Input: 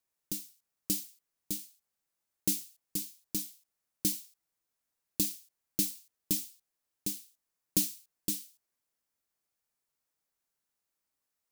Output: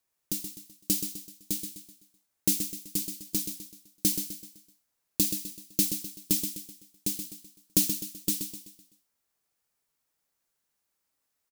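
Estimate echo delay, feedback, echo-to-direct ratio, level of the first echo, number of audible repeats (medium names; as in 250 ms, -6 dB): 127 ms, 42%, -7.0 dB, -8.0 dB, 4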